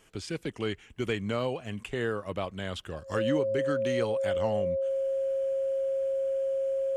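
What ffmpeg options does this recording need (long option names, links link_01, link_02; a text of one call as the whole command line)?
ffmpeg -i in.wav -af "bandreject=frequency=540:width=30" out.wav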